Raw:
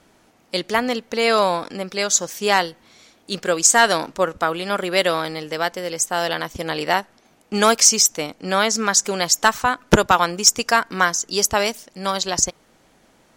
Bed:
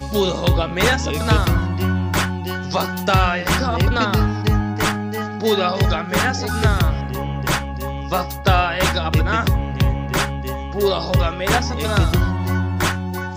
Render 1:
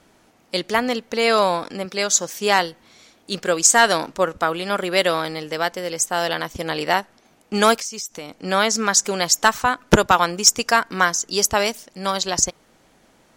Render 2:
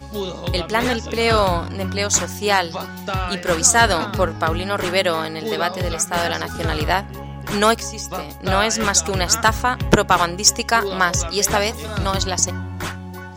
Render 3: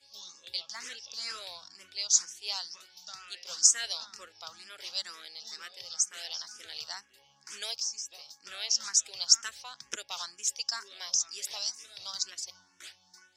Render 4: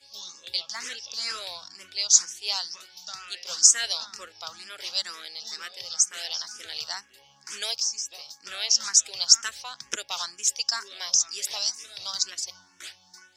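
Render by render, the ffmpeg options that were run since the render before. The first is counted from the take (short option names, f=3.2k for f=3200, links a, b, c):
-filter_complex "[0:a]asettb=1/sr,asplit=3[a][b][c];[a]atrim=end=1.854[d];[b]atrim=start=1.85:end=2.59,asetpts=PTS-STARTPTS,afade=t=in:d=0.004:c=qsin,afade=t=out:st=0.736:d=0.004:c=qsin,highpass=110[e];[c]atrim=start=2.586[f];[d][e]acrossfade=d=0.004:c1=hsin:c2=qsin[g];[g][f]acrossfade=d=0.004:c1=qsin:c2=hsin,asettb=1/sr,asplit=3[h][i][j];[h]atrim=end=7.764[k];[i]atrim=start=7.76:end=8.37,asetpts=PTS-STARTPTS,afade=t=in:d=0.004:c=qsin,afade=t=out:st=0.606:d=0.004:c=qsin,acompressor=threshold=-30dB:ratio=4:attack=3.2:release=140:knee=1:detection=peak[l];[j]atrim=start=8.366[m];[k][l]acrossfade=d=0.004:c1=hsin:c2=qsin[n];[n][m]acrossfade=d=0.004:c1=qsin:c2=hsin"
-filter_complex "[1:a]volume=-8dB[a];[0:a][a]amix=inputs=2:normalize=0"
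-filter_complex "[0:a]bandpass=f=5.4k:t=q:w=3.4:csg=0,asplit=2[a][b];[b]afreqshift=2.1[c];[a][c]amix=inputs=2:normalize=1"
-af "volume=6.5dB,alimiter=limit=-2dB:level=0:latency=1"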